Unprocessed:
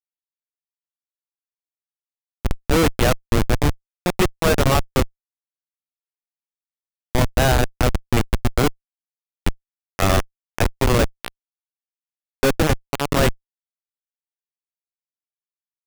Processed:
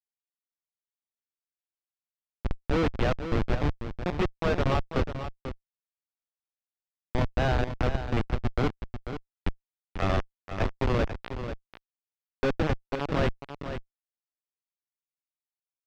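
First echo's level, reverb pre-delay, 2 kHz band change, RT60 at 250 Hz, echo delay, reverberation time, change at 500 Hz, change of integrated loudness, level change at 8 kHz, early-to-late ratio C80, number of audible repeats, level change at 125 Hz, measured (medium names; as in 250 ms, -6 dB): -9.5 dB, no reverb, -9.5 dB, no reverb, 491 ms, no reverb, -8.0 dB, -9.0 dB, -23.5 dB, no reverb, 1, -7.5 dB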